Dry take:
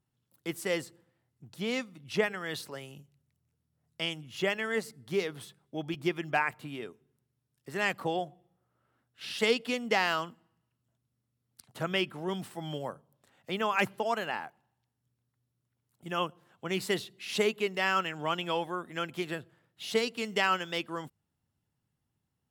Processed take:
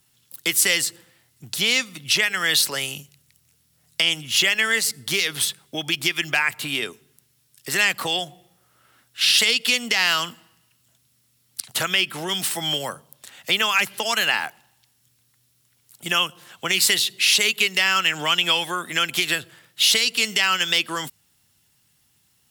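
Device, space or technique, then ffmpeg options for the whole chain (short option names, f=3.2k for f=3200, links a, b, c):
mastering chain: -filter_complex "[0:a]equalizer=f=1.1k:t=o:w=2.2:g=-3.5,acrossover=split=240|1400[a][b][c];[a]acompressor=threshold=-45dB:ratio=4[d];[b]acompressor=threshold=-39dB:ratio=4[e];[c]acompressor=threshold=-35dB:ratio=4[f];[d][e][f]amix=inputs=3:normalize=0,acompressor=threshold=-40dB:ratio=2,tiltshelf=f=1.1k:g=-9.5,alimiter=level_in=24dB:limit=-1dB:release=50:level=0:latency=1,volume=-5.5dB"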